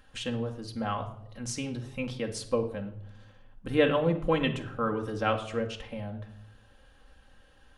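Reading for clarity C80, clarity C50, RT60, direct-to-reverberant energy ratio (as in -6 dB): 14.0 dB, 11.0 dB, 0.75 s, 2.5 dB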